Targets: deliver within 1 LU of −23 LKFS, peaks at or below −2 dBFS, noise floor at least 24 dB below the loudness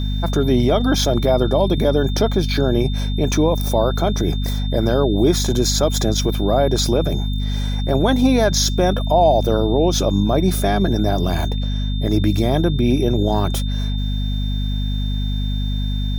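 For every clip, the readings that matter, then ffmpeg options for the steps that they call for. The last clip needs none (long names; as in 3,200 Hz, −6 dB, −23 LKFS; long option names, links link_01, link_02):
mains hum 50 Hz; hum harmonics up to 250 Hz; level of the hum −18 dBFS; interfering tone 3,600 Hz; level of the tone −33 dBFS; integrated loudness −18.5 LKFS; sample peak −3.5 dBFS; target loudness −23.0 LKFS
→ -af "bandreject=frequency=50:width_type=h:width=4,bandreject=frequency=100:width_type=h:width=4,bandreject=frequency=150:width_type=h:width=4,bandreject=frequency=200:width_type=h:width=4,bandreject=frequency=250:width_type=h:width=4"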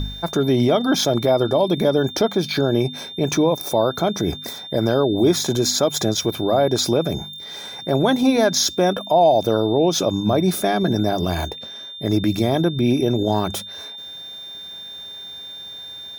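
mains hum none found; interfering tone 3,600 Hz; level of the tone −33 dBFS
→ -af "bandreject=frequency=3600:width=30"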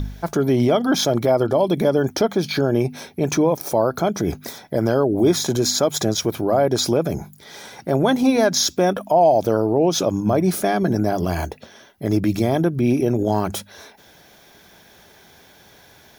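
interfering tone none found; integrated loudness −19.5 LKFS; sample peak −5.5 dBFS; target loudness −23.0 LKFS
→ -af "volume=-3.5dB"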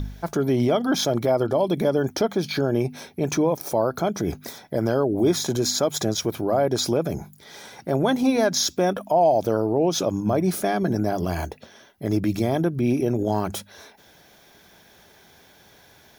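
integrated loudness −23.0 LKFS; sample peak −9.0 dBFS; background noise floor −54 dBFS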